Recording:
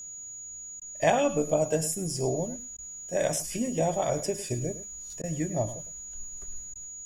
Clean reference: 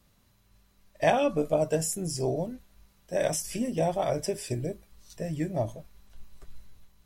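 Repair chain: band-stop 6.8 kHz, Q 30; interpolate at 0.80/2.77/5.22/6.74 s, 14 ms; inverse comb 106 ms -14 dB

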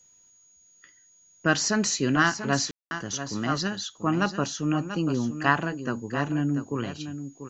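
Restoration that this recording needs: band-stop 6.7 kHz, Q 30; room tone fill 2.71–2.91 s; expander -51 dBFS, range -21 dB; inverse comb 689 ms -10 dB

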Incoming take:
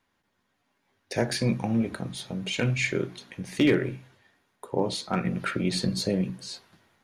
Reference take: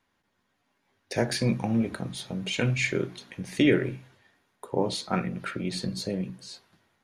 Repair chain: clip repair -14 dBFS; trim 0 dB, from 5.25 s -4.5 dB

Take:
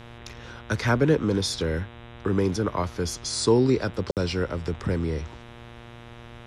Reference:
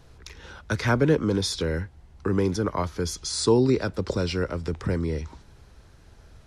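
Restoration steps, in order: de-hum 118.2 Hz, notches 33; interpolate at 4.11 s, 58 ms

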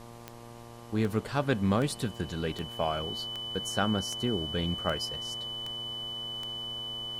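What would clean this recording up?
de-click; de-hum 117.8 Hz, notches 10; band-stop 3 kHz, Q 30; noise reduction 29 dB, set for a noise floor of -46 dBFS

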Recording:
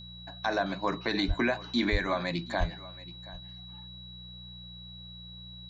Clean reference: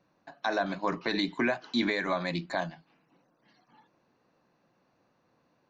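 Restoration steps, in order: de-hum 60.4 Hz, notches 3; band-stop 3.9 kHz, Q 30; de-plosive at 1.27/1.91/2.59 s; inverse comb 727 ms -19 dB

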